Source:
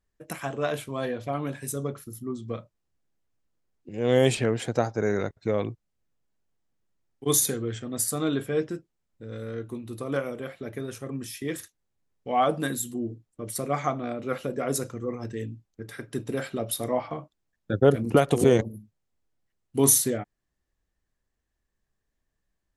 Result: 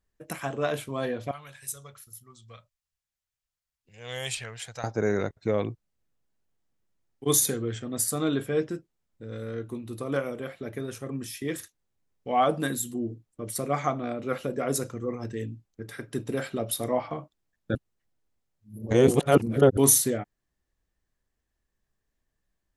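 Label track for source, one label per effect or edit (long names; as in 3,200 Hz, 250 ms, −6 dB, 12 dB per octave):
1.310000	4.840000	guitar amp tone stack bass-middle-treble 10-0-10
17.750000	19.770000	reverse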